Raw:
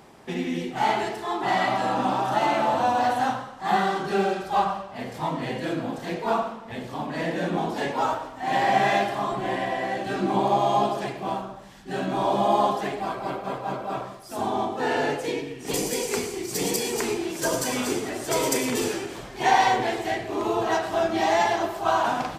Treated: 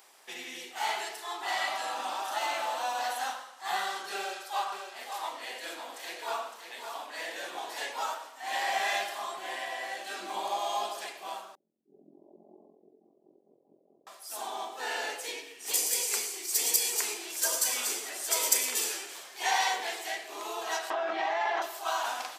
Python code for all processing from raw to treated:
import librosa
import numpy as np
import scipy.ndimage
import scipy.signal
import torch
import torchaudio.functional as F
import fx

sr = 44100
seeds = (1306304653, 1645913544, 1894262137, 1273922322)

y = fx.chain(x, sr, fx.highpass(hz=260.0, slope=12),
    fx.echo_single(ms=560, db=-7.5), at=(4.16, 7.89))
y = fx.chain(y, sr, fx.cheby2_lowpass(hz=1500.0, order=4, stop_db=70),
    fx.ring_mod(carrier_hz=22.0), at=(11.55, 14.07))
y = fx.chain(y, sr, fx.lowpass(hz=1900.0, slope=12),
    fx.peak_eq(hz=70.0, db=-12.0, octaves=1.7),
    fx.env_flatten(amount_pct=100), at=(20.9, 21.62))
y = scipy.signal.sosfilt(scipy.signal.butter(2, 440.0, 'highpass', fs=sr, output='sos'), y)
y = fx.tilt_eq(y, sr, slope=4.0)
y = F.gain(torch.from_numpy(y), -8.5).numpy()